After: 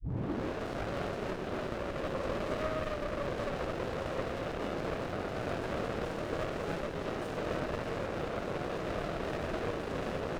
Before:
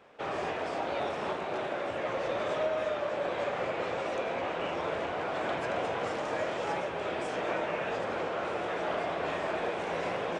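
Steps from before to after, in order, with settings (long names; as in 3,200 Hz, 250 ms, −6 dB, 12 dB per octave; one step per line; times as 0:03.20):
turntable start at the beginning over 0.63 s
windowed peak hold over 33 samples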